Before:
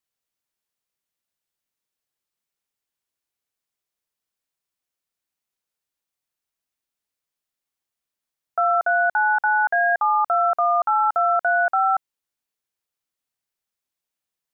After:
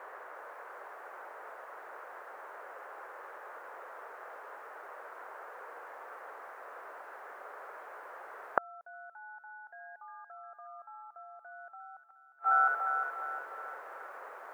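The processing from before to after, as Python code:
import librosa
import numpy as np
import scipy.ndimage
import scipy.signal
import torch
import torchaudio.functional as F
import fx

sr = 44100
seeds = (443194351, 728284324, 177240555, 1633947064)

y = fx.echo_wet_highpass(x, sr, ms=355, feedback_pct=46, hz=1700.0, wet_db=-4.0)
y = fx.dmg_noise_band(y, sr, seeds[0], low_hz=430.0, high_hz=1600.0, level_db=-59.0)
y = fx.gate_flip(y, sr, shuts_db=-25.0, range_db=-42)
y = y * librosa.db_to_amplitude(11.5)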